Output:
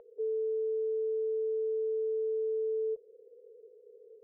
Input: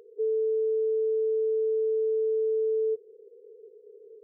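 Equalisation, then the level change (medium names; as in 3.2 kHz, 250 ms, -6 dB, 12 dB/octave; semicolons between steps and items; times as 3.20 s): distance through air 410 m; tilt EQ -2.5 dB/octave; resonant low shelf 480 Hz -6.5 dB, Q 3; 0.0 dB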